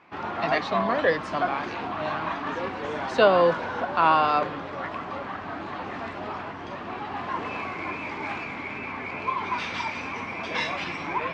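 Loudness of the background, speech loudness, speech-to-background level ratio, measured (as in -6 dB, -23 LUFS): -31.0 LUFS, -24.5 LUFS, 6.5 dB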